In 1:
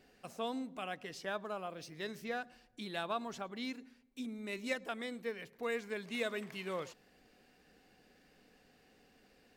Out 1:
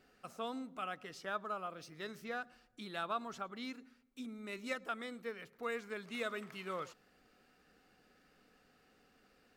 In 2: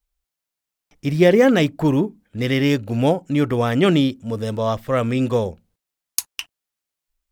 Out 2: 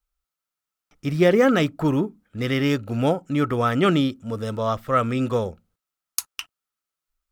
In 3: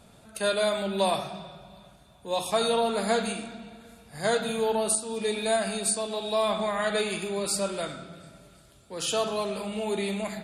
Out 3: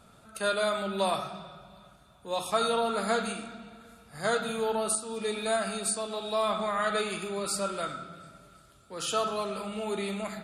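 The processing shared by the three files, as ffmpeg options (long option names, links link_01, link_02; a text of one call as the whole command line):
ffmpeg -i in.wav -af "equalizer=frequency=1300:width=5.2:gain=12,volume=-3.5dB" out.wav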